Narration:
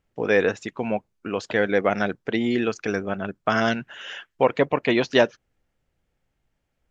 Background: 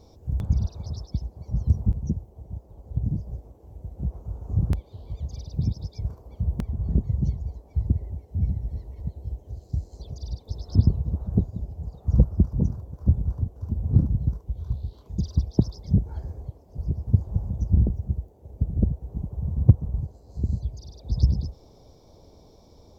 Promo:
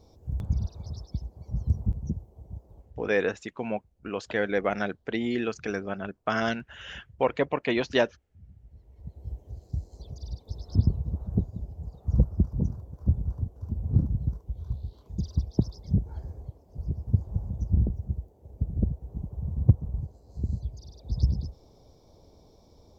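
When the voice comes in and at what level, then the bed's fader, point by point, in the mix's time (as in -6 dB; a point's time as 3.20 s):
2.80 s, -5.5 dB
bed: 2.78 s -4.5 dB
3.12 s -28 dB
8.42 s -28 dB
9.29 s -4 dB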